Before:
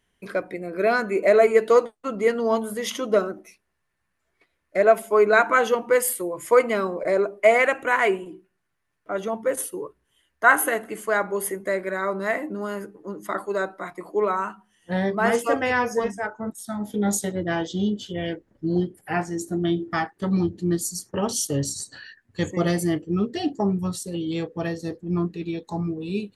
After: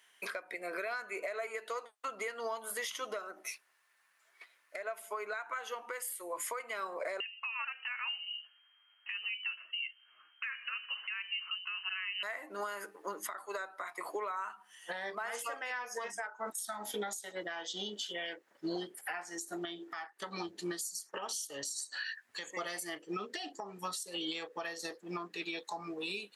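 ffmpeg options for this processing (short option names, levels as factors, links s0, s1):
-filter_complex "[0:a]asettb=1/sr,asplit=3[s0][s1][s2];[s0]atrim=end=7.204[s3];[s1]atrim=start=7.2:end=12.23,asetpts=PTS-STARTPTS,afade=t=in:d=0.004:c=qsin,afade=t=out:st=5.026:d=0.004:c=qsin,lowpass=f=2700:t=q:w=0.5098,lowpass=f=2700:t=q:w=0.6013,lowpass=f=2700:t=q:w=0.9,lowpass=f=2700:t=q:w=2.563,afreqshift=-3200[s4];[s2]atrim=start=12.226[s5];[s3][s4]acrossfade=d=0.004:c1=hsin:c2=qsin[s6];[s6][s5]acrossfade=d=0.004:c1=qsin:c2=hsin,highpass=970,acompressor=threshold=0.0112:ratio=10,alimiter=level_in=4.73:limit=0.0631:level=0:latency=1:release=346,volume=0.211,volume=2.82"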